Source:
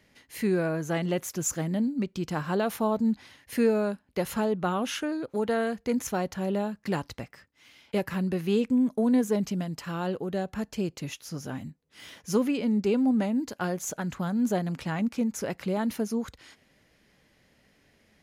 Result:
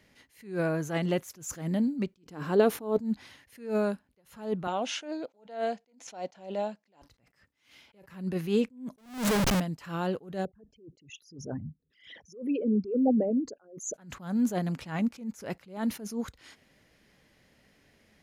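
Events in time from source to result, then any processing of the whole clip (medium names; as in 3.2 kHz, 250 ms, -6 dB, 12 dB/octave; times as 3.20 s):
2.23–2.98 s: small resonant body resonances 290/420 Hz, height 11 dB
4.67–7.02 s: cabinet simulation 330–7400 Hz, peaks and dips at 400 Hz -5 dB, 680 Hz +6 dB, 1.2 kHz -8 dB, 1.7 kHz -6 dB
8.98–9.60 s: Schmitt trigger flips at -38.5 dBFS
10.45–13.94 s: resonances exaggerated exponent 3
whole clip: attacks held to a fixed rise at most 140 dB/s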